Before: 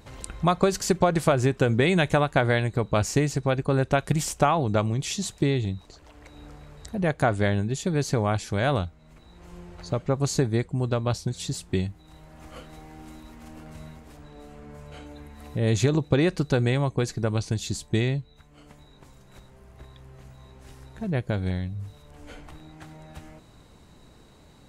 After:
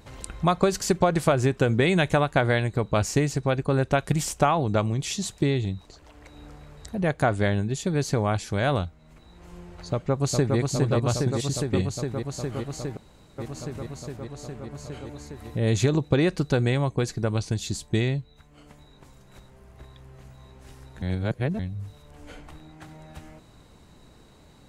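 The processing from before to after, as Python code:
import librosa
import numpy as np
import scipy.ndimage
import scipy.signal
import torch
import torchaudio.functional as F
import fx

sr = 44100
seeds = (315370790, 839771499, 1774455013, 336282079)

y = fx.echo_throw(x, sr, start_s=9.91, length_s=0.67, ms=410, feedback_pct=85, wet_db=-3.0)
y = fx.band_widen(y, sr, depth_pct=40, at=(22.32, 22.88))
y = fx.edit(y, sr, fx.room_tone_fill(start_s=12.97, length_s=0.41),
    fx.reverse_span(start_s=21.02, length_s=0.57), tone=tone)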